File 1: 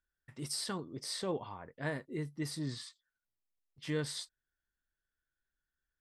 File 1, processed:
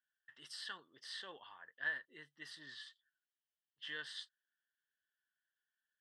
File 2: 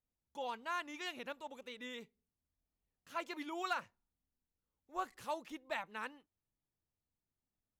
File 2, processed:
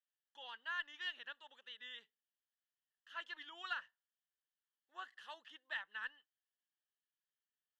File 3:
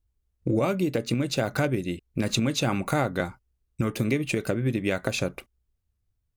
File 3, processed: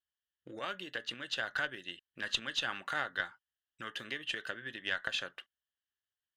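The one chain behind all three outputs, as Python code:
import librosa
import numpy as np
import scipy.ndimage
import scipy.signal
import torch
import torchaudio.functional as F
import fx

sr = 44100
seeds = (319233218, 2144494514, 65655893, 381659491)

y = fx.double_bandpass(x, sr, hz=2300.0, octaves=0.8)
y = fx.cheby_harmonics(y, sr, harmonics=(2,), levels_db=(-18,), full_scale_db=-22.0)
y = F.gain(torch.from_numpy(y), 5.5).numpy()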